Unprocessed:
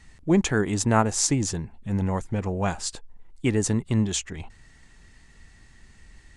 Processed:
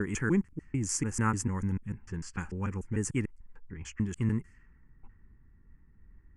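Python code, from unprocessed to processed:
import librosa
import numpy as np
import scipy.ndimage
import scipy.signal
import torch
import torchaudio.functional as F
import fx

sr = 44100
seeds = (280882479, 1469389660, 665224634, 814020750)

y = fx.block_reorder(x, sr, ms=148.0, group=5)
y = fx.fixed_phaser(y, sr, hz=1600.0, stages=4)
y = fx.env_lowpass(y, sr, base_hz=620.0, full_db=-24.5)
y = F.gain(torch.from_numpy(y), -5.0).numpy()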